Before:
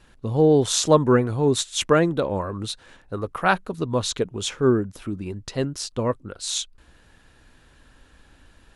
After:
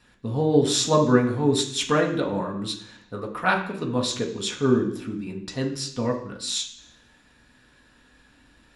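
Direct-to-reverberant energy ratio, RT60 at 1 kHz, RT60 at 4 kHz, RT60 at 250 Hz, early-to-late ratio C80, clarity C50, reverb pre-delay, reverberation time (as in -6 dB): -0.5 dB, 0.65 s, 0.85 s, 0.95 s, 11.5 dB, 8.5 dB, 3 ms, 0.65 s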